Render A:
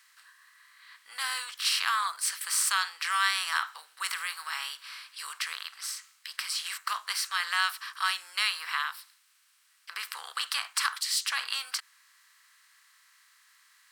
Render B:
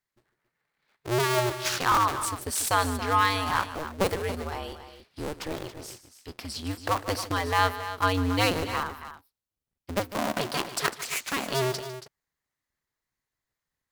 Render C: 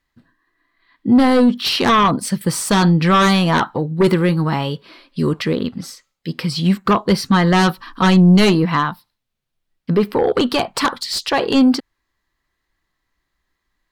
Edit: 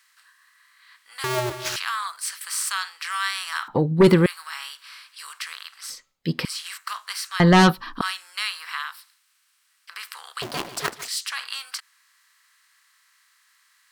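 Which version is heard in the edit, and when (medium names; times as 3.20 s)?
A
1.24–1.76 s: from B
3.68–4.26 s: from C
5.90–6.45 s: from C
7.40–8.01 s: from C
10.42–11.08 s: from B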